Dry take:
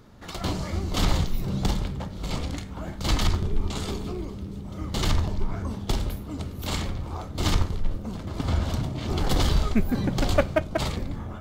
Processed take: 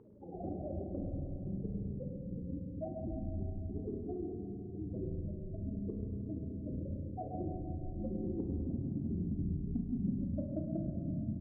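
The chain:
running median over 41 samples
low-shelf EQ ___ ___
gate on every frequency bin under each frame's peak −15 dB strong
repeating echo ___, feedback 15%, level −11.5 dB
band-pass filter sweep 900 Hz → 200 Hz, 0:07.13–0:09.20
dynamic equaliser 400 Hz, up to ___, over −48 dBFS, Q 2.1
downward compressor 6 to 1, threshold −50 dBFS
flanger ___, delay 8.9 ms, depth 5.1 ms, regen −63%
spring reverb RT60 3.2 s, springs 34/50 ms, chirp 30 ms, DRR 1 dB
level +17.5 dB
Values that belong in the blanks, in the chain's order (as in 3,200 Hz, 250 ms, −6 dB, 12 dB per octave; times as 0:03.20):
87 Hz, +2.5 dB, 129 ms, −3 dB, 0.84 Hz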